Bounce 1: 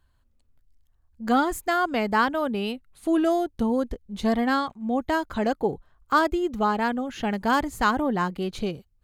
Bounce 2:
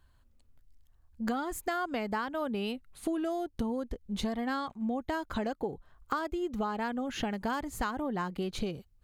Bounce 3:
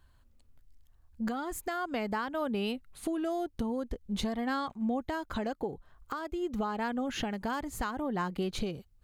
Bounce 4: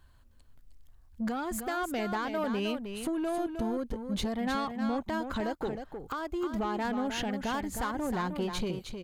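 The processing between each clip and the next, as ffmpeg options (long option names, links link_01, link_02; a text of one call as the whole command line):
ffmpeg -i in.wav -af "acompressor=threshold=-31dB:ratio=12,volume=1.5dB" out.wav
ffmpeg -i in.wav -af "alimiter=limit=-24dB:level=0:latency=1:release=438,volume=1.5dB" out.wav
ffmpeg -i in.wav -af "asoftclip=type=tanh:threshold=-29dB,aecho=1:1:311:0.422,volume=3dB" out.wav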